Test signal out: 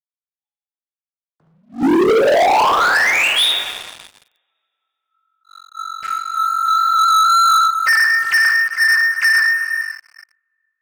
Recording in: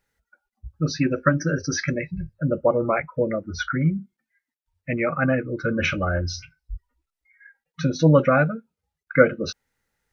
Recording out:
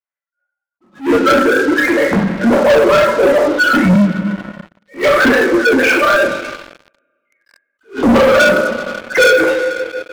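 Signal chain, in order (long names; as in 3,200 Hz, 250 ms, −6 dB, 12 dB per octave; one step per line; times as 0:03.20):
three sine waves on the formant tracks
coupled-rooms reverb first 0.5 s, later 2.7 s, from −17 dB, DRR −5 dB
leveller curve on the samples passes 5
level that may rise only so fast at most 240 dB per second
level −7 dB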